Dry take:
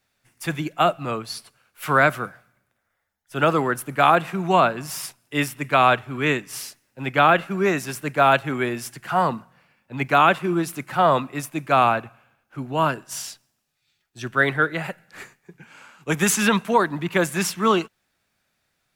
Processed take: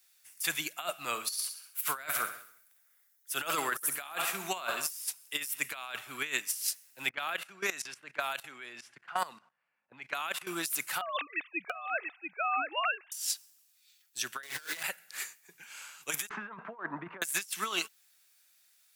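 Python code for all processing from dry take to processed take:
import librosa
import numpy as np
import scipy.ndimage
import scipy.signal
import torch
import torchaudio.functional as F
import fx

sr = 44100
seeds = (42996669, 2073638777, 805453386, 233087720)

y = fx.chain(x, sr, fx.high_shelf(hz=9500.0, db=4.5),
    fx.echo_feedback(ms=67, feedback_pct=49, wet_db=-12.5), at=(1.06, 4.91))
y = fx.chain(y, sr, fx.env_lowpass(base_hz=1100.0, full_db=-15.0),
    fx.level_steps(step_db=19), at=(7.09, 10.47))
y = fx.chain(y, sr, fx.sine_speech(),
    fx.echo_single(ms=687, db=-5.5), at=(11.01, 13.12))
y = fx.chain(y, sr, fx.highpass(hz=140.0, slope=6),
    fx.power_curve(exponent=0.5),
    fx.doubler(ms=38.0, db=-7), at=(14.43, 14.83))
y = fx.chain(y, sr, fx.lowpass(hz=1400.0, slope=24),
    fx.over_compress(threshold_db=-26.0, ratio=-0.5), at=(16.29, 17.22))
y = np.diff(y, prepend=0.0)
y = fx.over_compress(y, sr, threshold_db=-38.0, ratio=-0.5)
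y = F.gain(torch.from_numpy(y), 5.0).numpy()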